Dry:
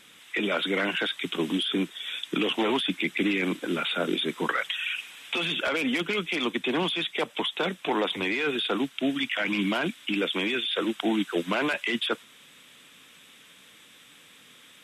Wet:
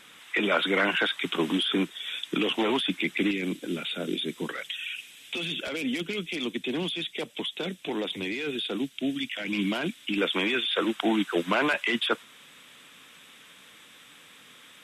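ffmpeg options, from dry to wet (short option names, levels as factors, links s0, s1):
-af "asetnsamples=n=441:p=0,asendcmd='1.85 equalizer g -1;3.31 equalizer g -12.5;9.53 equalizer g -5.5;10.18 equalizer g 3.5',equalizer=f=1100:t=o:w=1.9:g=5"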